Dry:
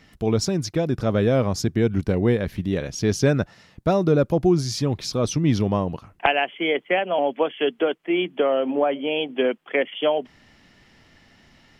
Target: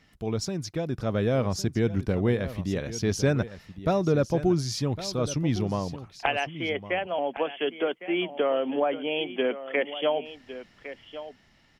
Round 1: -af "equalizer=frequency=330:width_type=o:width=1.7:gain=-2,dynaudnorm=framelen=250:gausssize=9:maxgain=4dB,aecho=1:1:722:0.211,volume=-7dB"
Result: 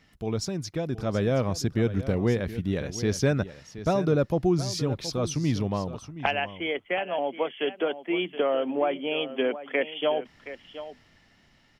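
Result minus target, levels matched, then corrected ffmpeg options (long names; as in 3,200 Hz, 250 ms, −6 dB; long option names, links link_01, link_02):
echo 386 ms early
-af "equalizer=frequency=330:width_type=o:width=1.7:gain=-2,dynaudnorm=framelen=250:gausssize=9:maxgain=4dB,aecho=1:1:1108:0.211,volume=-7dB"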